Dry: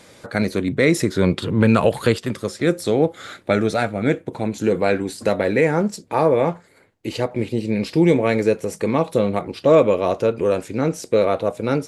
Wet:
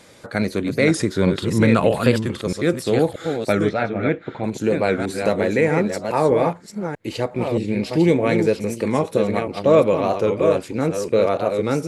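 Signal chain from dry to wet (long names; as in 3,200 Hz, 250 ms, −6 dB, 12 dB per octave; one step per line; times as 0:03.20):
delay that plays each chunk backwards 632 ms, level −6 dB
0:03.69–0:04.44: Chebyshev low-pass filter 2,500 Hz, order 2
wow of a warped record 45 rpm, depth 100 cents
level −1 dB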